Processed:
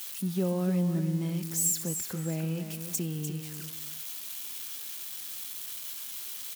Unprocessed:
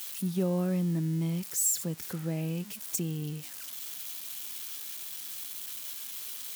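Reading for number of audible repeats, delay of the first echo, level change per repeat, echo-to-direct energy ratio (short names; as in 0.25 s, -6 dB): 2, 0.299 s, -11.0 dB, -8.0 dB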